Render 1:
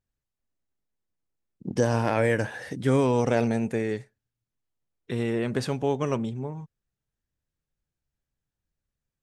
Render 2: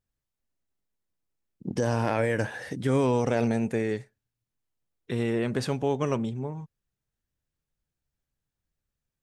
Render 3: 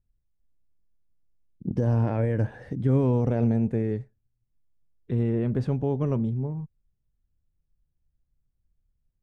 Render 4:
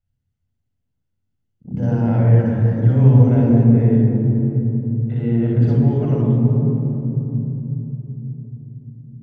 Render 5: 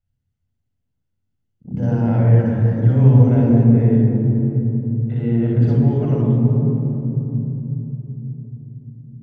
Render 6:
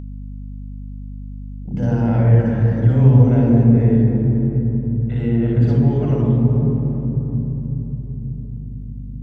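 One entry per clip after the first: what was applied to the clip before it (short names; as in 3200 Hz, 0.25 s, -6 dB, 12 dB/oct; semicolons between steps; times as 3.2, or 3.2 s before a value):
limiter -15 dBFS, peak gain reduction 5 dB
tilt -4.5 dB/oct; gain -7 dB
reverb RT60 3.5 s, pre-delay 31 ms, DRR -2 dB; gain -7.5 dB
nothing audible
hum 50 Hz, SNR 14 dB; mismatched tape noise reduction encoder only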